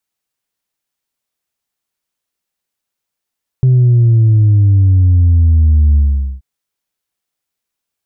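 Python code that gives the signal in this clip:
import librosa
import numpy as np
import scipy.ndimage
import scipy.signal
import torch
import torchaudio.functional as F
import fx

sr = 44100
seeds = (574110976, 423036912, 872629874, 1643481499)

y = fx.sub_drop(sr, level_db=-6.0, start_hz=130.0, length_s=2.78, drive_db=1, fade_s=0.45, end_hz=65.0)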